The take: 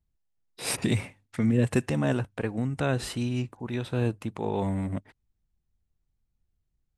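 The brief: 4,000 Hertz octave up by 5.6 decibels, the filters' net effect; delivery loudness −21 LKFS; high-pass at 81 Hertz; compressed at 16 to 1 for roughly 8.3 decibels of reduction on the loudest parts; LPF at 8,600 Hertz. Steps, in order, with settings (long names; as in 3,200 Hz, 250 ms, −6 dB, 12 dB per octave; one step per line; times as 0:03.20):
high-pass filter 81 Hz
low-pass filter 8,600 Hz
parametric band 4,000 Hz +7 dB
downward compressor 16 to 1, threshold −27 dBFS
level +12.5 dB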